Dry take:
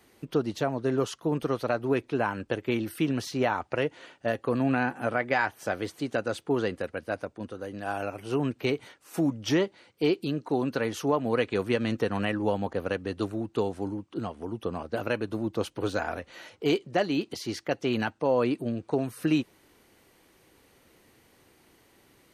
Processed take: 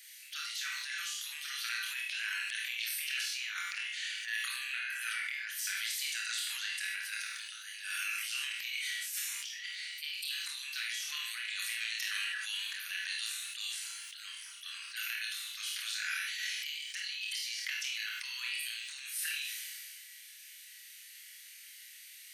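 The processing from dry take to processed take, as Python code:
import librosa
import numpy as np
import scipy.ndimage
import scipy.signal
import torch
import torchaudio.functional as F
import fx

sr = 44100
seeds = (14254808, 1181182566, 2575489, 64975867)

y = scipy.signal.sosfilt(scipy.signal.butter(8, 1700.0, 'highpass', fs=sr, output='sos'), x)
y = fx.high_shelf(y, sr, hz=2300.0, db=9.5)
y = fx.transient(y, sr, attack_db=-10, sustain_db=4)
y = fx.over_compress(y, sr, threshold_db=-41.0, ratio=-1.0)
y = fx.room_flutter(y, sr, wall_m=4.6, rt60_s=0.32)
y = fx.rev_schroeder(y, sr, rt60_s=0.37, comb_ms=32, drr_db=3.5)
y = fx.sustainer(y, sr, db_per_s=21.0)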